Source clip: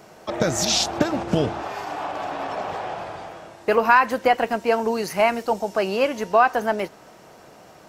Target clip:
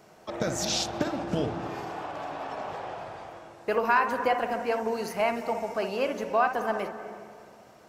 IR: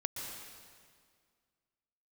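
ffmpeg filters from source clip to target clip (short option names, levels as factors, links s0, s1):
-filter_complex "[0:a]asplit=2[s0][s1];[1:a]atrim=start_sample=2205,lowpass=2100,adelay=59[s2];[s1][s2]afir=irnorm=-1:irlink=0,volume=0.473[s3];[s0][s3]amix=inputs=2:normalize=0,volume=0.398"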